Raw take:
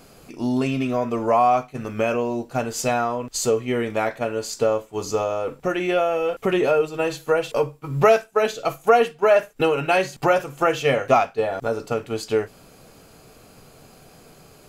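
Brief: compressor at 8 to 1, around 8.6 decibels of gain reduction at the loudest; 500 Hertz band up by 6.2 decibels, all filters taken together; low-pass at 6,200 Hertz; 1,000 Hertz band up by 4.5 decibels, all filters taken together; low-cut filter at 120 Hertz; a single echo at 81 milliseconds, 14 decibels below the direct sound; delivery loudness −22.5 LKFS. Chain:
high-pass filter 120 Hz
low-pass filter 6,200 Hz
parametric band 500 Hz +6.5 dB
parametric band 1,000 Hz +3.5 dB
downward compressor 8 to 1, threshold −14 dBFS
single-tap delay 81 ms −14 dB
level −2 dB

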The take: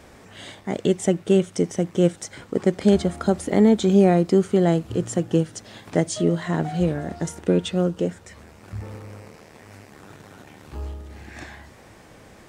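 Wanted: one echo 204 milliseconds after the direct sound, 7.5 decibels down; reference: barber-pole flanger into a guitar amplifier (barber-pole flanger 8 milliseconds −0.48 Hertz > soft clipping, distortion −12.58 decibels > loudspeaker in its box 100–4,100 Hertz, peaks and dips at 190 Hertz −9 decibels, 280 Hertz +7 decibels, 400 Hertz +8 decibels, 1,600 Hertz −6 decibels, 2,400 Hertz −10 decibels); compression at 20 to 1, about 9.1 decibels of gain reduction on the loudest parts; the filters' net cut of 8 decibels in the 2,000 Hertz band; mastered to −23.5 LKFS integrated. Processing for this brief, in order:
parametric band 2,000 Hz −3 dB
downward compressor 20 to 1, threshold −20 dBFS
single-tap delay 204 ms −7.5 dB
barber-pole flanger 8 ms −0.48 Hz
soft clipping −24 dBFS
loudspeaker in its box 100–4,100 Hz, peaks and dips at 190 Hz −9 dB, 280 Hz +7 dB, 400 Hz +8 dB, 1,600 Hz −6 dB, 2,400 Hz −10 dB
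level +7.5 dB

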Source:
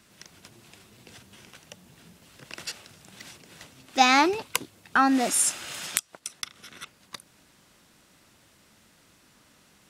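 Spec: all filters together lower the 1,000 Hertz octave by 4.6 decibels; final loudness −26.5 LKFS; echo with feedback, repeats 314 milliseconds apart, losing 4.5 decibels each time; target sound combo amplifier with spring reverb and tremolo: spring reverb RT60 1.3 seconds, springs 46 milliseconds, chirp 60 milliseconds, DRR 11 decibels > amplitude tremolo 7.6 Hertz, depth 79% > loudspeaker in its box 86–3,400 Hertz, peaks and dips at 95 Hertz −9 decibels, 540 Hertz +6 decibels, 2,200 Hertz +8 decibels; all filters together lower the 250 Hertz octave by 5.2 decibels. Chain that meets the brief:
parametric band 250 Hz −5.5 dB
parametric band 1,000 Hz −7 dB
repeating echo 314 ms, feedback 60%, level −4.5 dB
spring reverb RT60 1.3 s, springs 46 ms, chirp 60 ms, DRR 11 dB
amplitude tremolo 7.6 Hz, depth 79%
loudspeaker in its box 86–3,400 Hz, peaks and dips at 95 Hz −9 dB, 540 Hz +6 dB, 2,200 Hz +8 dB
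level +1.5 dB

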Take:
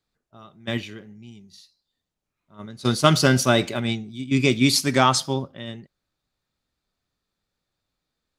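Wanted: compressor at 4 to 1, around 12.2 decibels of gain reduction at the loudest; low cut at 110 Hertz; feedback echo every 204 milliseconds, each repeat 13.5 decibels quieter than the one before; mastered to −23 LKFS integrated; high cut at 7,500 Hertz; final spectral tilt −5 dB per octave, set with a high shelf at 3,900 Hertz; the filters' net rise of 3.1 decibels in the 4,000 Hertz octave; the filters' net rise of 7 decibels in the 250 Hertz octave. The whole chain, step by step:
high-pass filter 110 Hz
low-pass filter 7,500 Hz
parametric band 250 Hz +8 dB
high-shelf EQ 3,900 Hz −4 dB
parametric band 4,000 Hz +6.5 dB
downward compressor 4 to 1, threshold −24 dBFS
repeating echo 204 ms, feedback 21%, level −13.5 dB
level +5 dB

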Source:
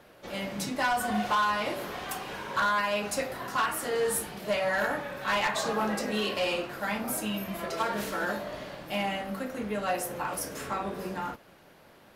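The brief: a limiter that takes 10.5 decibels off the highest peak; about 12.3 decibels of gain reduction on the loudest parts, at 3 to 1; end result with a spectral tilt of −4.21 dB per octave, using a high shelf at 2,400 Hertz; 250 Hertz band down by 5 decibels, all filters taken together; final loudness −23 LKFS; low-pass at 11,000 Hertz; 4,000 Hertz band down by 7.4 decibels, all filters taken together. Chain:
low-pass filter 11,000 Hz
parametric band 250 Hz −6.5 dB
high-shelf EQ 2,400 Hz −7.5 dB
parametric band 4,000 Hz −3.5 dB
downward compressor 3 to 1, threshold −43 dBFS
level +25 dB
brickwall limiter −15.5 dBFS

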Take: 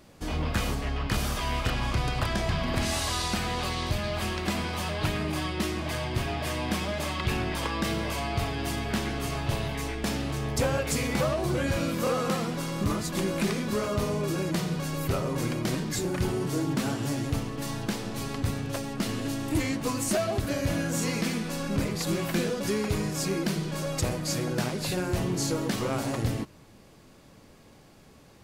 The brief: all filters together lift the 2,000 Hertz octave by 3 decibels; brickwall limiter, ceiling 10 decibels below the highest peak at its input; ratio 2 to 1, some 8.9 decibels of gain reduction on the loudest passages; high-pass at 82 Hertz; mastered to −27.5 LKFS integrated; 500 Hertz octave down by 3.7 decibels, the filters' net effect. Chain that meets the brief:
high-pass filter 82 Hz
parametric band 500 Hz −5 dB
parametric band 2,000 Hz +4 dB
downward compressor 2 to 1, threshold −41 dBFS
level +13 dB
brickwall limiter −19 dBFS

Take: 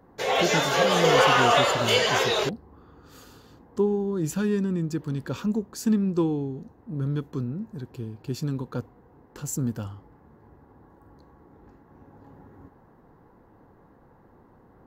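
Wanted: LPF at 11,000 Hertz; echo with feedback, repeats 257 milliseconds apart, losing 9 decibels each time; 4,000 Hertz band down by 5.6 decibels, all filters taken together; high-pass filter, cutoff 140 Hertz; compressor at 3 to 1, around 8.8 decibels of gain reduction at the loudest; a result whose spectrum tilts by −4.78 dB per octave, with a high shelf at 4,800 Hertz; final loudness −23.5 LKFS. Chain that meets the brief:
high-pass filter 140 Hz
low-pass filter 11,000 Hz
parametric band 4,000 Hz −4 dB
high-shelf EQ 4,800 Hz −8.5 dB
downward compressor 3 to 1, threshold −28 dBFS
repeating echo 257 ms, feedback 35%, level −9 dB
level +8 dB

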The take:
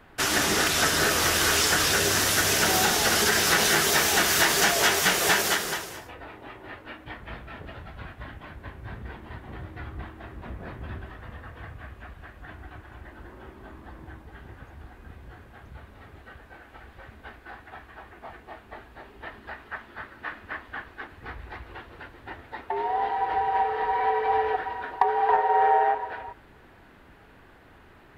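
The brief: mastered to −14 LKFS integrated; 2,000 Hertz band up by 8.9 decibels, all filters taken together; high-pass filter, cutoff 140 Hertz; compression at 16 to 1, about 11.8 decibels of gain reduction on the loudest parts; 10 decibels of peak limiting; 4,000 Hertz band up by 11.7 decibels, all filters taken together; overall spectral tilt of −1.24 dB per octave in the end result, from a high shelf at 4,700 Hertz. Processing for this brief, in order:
high-pass filter 140 Hz
parametric band 2,000 Hz +8 dB
parametric band 4,000 Hz +8.5 dB
high-shelf EQ 4,700 Hz +8 dB
downward compressor 16 to 1, threshold −20 dBFS
level +14 dB
brickwall limiter −3 dBFS

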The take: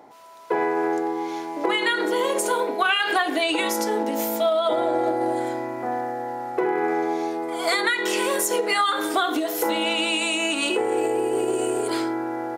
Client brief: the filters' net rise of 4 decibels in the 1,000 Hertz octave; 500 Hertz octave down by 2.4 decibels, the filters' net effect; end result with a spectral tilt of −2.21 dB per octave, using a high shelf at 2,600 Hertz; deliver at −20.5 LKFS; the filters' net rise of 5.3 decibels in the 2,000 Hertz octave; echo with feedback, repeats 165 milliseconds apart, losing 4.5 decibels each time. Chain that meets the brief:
parametric band 500 Hz −5 dB
parametric band 1,000 Hz +6 dB
parametric band 2,000 Hz +8.5 dB
high-shelf EQ 2,600 Hz −8 dB
repeating echo 165 ms, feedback 60%, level −4.5 dB
level −1 dB

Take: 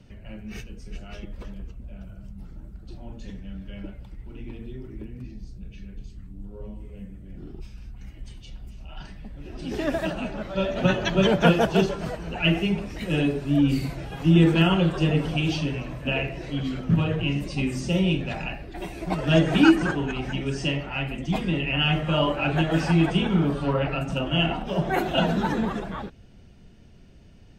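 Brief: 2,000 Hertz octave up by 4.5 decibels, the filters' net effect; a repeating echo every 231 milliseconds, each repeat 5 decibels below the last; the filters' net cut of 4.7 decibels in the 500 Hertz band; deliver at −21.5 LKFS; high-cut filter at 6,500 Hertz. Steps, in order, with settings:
low-pass filter 6,500 Hz
parametric band 500 Hz −7 dB
parametric band 2,000 Hz +7 dB
repeating echo 231 ms, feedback 56%, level −5 dB
level +1 dB

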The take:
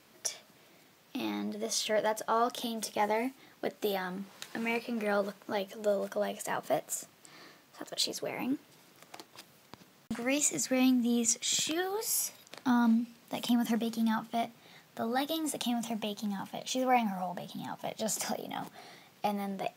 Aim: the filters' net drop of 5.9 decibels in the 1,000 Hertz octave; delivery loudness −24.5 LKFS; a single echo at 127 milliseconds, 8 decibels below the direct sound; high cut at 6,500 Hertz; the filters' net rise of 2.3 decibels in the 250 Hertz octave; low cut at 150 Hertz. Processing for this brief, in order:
high-pass filter 150 Hz
low-pass filter 6,500 Hz
parametric band 250 Hz +3.5 dB
parametric band 1,000 Hz −9 dB
single-tap delay 127 ms −8 dB
level +8 dB

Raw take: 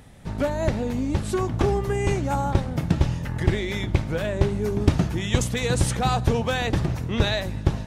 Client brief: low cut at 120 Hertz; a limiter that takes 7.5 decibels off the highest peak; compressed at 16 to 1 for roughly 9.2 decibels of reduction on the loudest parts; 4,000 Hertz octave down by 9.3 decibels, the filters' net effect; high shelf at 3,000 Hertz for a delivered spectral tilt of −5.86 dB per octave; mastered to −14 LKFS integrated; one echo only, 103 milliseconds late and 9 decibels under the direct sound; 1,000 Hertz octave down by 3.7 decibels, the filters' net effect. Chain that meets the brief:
high-pass filter 120 Hz
parametric band 1,000 Hz −4 dB
high-shelf EQ 3,000 Hz −9 dB
parametric band 4,000 Hz −4.5 dB
downward compressor 16 to 1, threshold −26 dBFS
brickwall limiter −22.5 dBFS
single-tap delay 103 ms −9 dB
level +18.5 dB

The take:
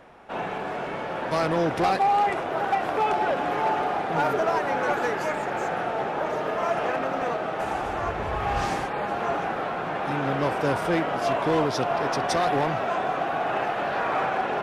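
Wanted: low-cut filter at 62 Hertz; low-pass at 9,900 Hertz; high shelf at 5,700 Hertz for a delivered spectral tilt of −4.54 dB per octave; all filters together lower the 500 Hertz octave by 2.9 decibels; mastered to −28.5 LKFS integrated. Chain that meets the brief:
high-pass filter 62 Hz
low-pass filter 9,900 Hz
parametric band 500 Hz −4 dB
high-shelf EQ 5,700 Hz +7.5 dB
level −1.5 dB

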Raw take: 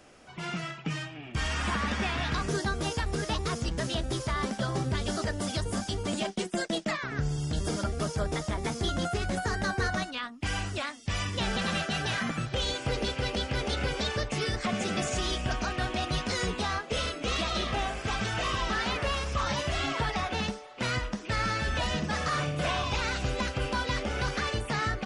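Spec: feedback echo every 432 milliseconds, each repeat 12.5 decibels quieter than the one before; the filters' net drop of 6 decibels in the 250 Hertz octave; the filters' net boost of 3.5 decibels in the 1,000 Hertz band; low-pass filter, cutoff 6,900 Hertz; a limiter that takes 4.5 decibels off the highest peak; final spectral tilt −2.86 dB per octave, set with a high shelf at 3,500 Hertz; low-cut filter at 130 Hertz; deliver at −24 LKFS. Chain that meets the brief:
high-pass filter 130 Hz
low-pass filter 6,900 Hz
parametric band 250 Hz −8 dB
parametric band 1,000 Hz +4.5 dB
high-shelf EQ 3,500 Hz +5 dB
brickwall limiter −20.5 dBFS
repeating echo 432 ms, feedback 24%, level −12.5 dB
level +6.5 dB

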